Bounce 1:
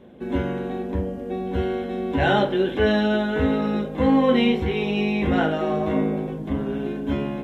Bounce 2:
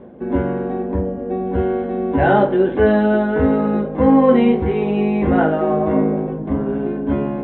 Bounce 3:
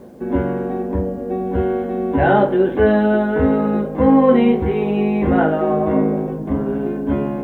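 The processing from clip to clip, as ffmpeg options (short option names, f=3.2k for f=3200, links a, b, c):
-af "lowpass=1.3k,lowshelf=f=200:g=-4,areverse,acompressor=mode=upward:threshold=-33dB:ratio=2.5,areverse,volume=7dB"
-af "acrusher=bits=9:mix=0:aa=0.000001"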